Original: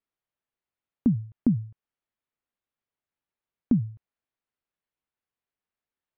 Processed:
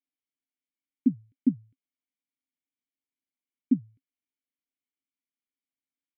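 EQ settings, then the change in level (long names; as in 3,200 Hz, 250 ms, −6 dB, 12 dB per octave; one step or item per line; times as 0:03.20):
formant filter i
+5.0 dB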